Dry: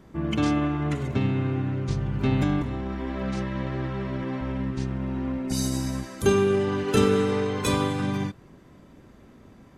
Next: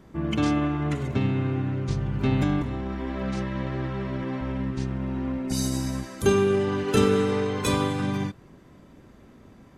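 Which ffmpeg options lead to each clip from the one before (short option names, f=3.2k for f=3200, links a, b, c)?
-af anull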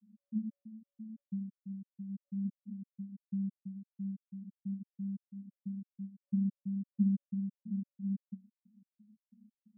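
-af "asuperpass=centerf=210:order=12:qfactor=4.9,afftfilt=real='re*gt(sin(2*PI*3*pts/sr)*(1-2*mod(floor(b*sr/1024/590),2)),0)':imag='im*gt(sin(2*PI*3*pts/sr)*(1-2*mod(floor(b*sr/1024/590),2)),0)':win_size=1024:overlap=0.75,volume=-2dB"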